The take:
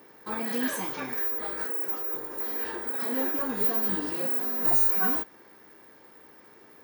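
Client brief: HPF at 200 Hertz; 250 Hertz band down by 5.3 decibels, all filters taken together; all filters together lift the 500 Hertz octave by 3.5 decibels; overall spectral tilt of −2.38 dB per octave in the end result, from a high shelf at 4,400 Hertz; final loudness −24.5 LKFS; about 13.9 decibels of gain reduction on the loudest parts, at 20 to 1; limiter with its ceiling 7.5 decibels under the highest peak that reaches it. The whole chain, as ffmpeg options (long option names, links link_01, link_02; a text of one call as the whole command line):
ffmpeg -i in.wav -af "highpass=200,equalizer=frequency=250:width_type=o:gain=-6.5,equalizer=frequency=500:width_type=o:gain=6,highshelf=frequency=4400:gain=-6.5,acompressor=threshold=-38dB:ratio=20,volume=18.5dB,alimiter=limit=-17dB:level=0:latency=1" out.wav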